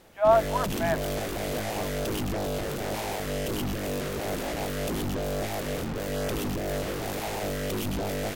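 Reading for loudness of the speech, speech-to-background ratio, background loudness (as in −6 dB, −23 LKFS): −25.5 LKFS, 5.5 dB, −31.0 LKFS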